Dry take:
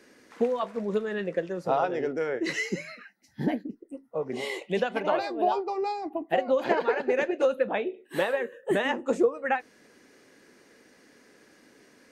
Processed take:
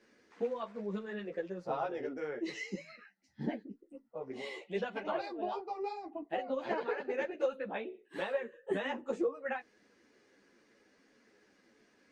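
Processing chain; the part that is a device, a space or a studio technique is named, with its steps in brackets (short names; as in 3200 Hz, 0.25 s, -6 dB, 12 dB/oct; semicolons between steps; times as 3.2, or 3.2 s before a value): 2.41–2.89 bell 1500 Hz -13 dB 0.45 oct; string-machine ensemble chorus (ensemble effect; LPF 6300 Hz 12 dB/oct); gain -6.5 dB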